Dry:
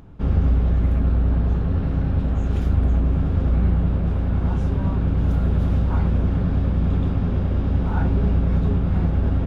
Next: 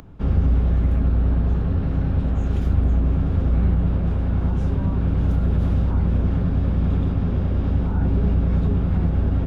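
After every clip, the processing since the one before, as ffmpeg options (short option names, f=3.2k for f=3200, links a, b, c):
-filter_complex "[0:a]acrossover=split=280|450[a][b][c];[c]alimiter=level_in=8dB:limit=-24dB:level=0:latency=1:release=88,volume=-8dB[d];[a][b][d]amix=inputs=3:normalize=0,acompressor=mode=upward:threshold=-41dB:ratio=2.5"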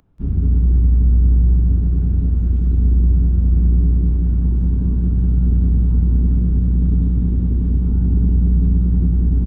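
-af "afwtdn=0.126,aecho=1:1:183|366|549|732|915|1098|1281:0.631|0.347|0.191|0.105|0.0577|0.0318|0.0175"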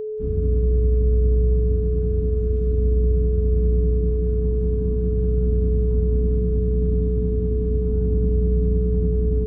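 -af "aeval=exprs='val(0)+0.1*sin(2*PI*430*n/s)':c=same,volume=-5.5dB"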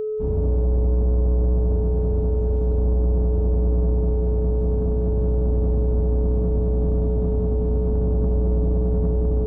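-af "asoftclip=type=tanh:threshold=-18dB,volume=3dB"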